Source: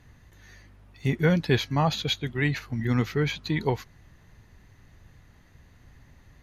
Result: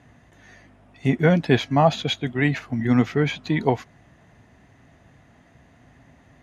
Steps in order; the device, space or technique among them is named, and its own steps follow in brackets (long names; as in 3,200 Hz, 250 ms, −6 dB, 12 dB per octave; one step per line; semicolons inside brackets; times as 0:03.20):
car door speaker (loudspeaker in its box 86–9,500 Hz, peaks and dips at 89 Hz −6 dB, 260 Hz +6 dB, 680 Hz +10 dB, 4,300 Hz −8 dB, 6,100 Hz −4 dB)
level +3.5 dB